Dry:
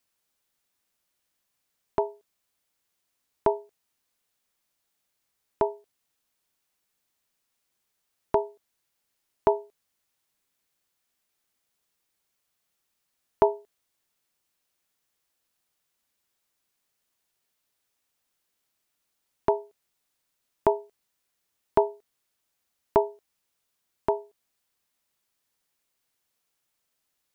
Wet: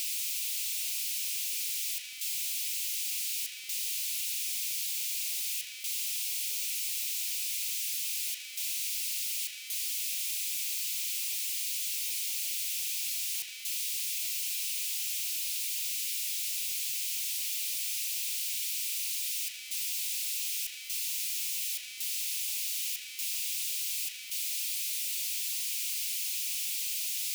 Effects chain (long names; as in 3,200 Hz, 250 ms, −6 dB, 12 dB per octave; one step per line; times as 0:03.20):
sign of each sample alone
elliptic high-pass filter 2,400 Hz, stop band 70 dB
level +3.5 dB